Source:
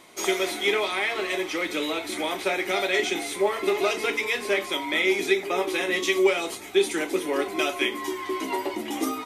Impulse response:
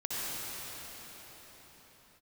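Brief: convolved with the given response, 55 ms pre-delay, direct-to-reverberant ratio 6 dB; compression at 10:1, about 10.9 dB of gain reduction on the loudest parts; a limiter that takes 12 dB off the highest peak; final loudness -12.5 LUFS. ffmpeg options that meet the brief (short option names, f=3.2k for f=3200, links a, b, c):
-filter_complex "[0:a]acompressor=threshold=-26dB:ratio=10,alimiter=level_in=4dB:limit=-24dB:level=0:latency=1,volume=-4dB,asplit=2[a][b];[1:a]atrim=start_sample=2205,adelay=55[c];[b][c]afir=irnorm=-1:irlink=0,volume=-13dB[d];[a][d]amix=inputs=2:normalize=0,volume=22.5dB"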